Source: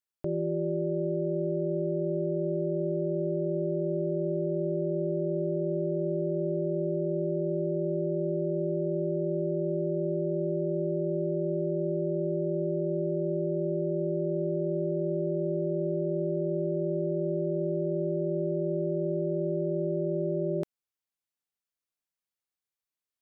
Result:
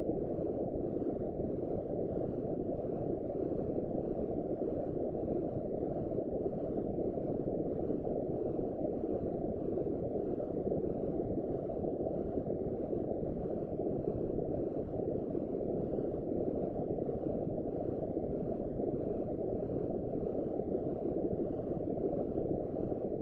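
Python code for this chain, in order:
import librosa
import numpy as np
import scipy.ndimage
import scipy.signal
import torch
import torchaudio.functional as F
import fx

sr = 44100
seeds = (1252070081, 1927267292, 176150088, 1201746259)

p1 = fx.dereverb_blind(x, sr, rt60_s=1.8)
p2 = np.clip(p1, -10.0 ** (-30.5 / 20.0), 10.0 ** (-30.5 / 20.0))
p3 = p1 + (p2 * librosa.db_to_amplitude(-7.5))
p4 = fx.paulstretch(p3, sr, seeds[0], factor=6.8, window_s=0.05, from_s=9.44)
p5 = fx.whisperise(p4, sr, seeds[1])
y = p5 * librosa.db_to_amplitude(-3.5)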